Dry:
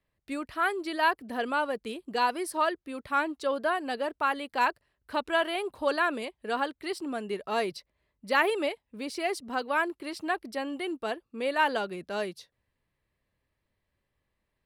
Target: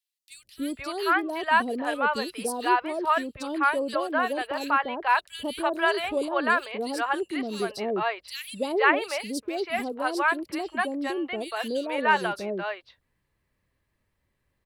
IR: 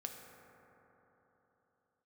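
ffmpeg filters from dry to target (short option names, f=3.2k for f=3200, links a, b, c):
-filter_complex "[0:a]acrossover=split=610|3300[a][b][c];[a]adelay=300[d];[b]adelay=490[e];[d][e][c]amix=inputs=3:normalize=0,volume=5dB"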